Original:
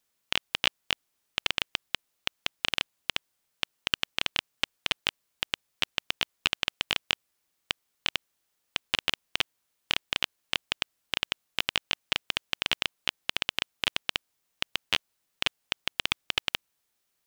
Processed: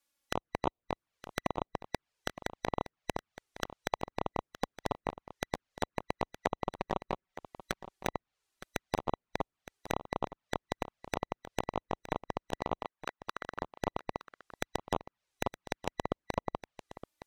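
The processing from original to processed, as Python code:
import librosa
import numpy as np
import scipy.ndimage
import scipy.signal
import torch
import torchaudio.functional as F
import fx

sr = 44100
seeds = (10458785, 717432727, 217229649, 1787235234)

y = fx.band_swap(x, sr, width_hz=2000)
y = fx.env_lowpass_down(y, sr, base_hz=1200.0, full_db=-32.0)
y = fx.highpass(y, sr, hz=880.0, slope=6, at=(12.8, 13.6))
y = fx.env_flanger(y, sr, rest_ms=3.6, full_db=-31.0)
y = fx.comb(y, sr, ms=5.3, depth=0.41, at=(6.65, 8.07))
y = y + 10.0 ** (-14.0 / 20.0) * np.pad(y, (int(916 * sr / 1000.0), 0))[:len(y)]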